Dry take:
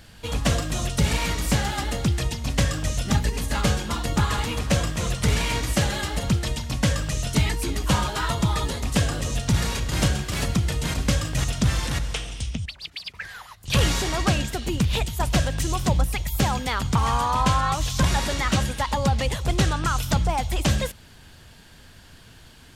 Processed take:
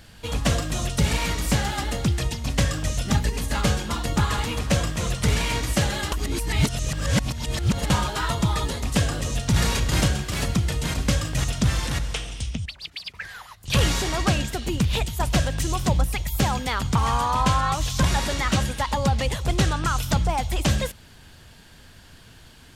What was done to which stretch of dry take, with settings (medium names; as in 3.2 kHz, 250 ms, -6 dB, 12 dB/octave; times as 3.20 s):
6.12–7.90 s: reverse
9.56–10.01 s: gain +3.5 dB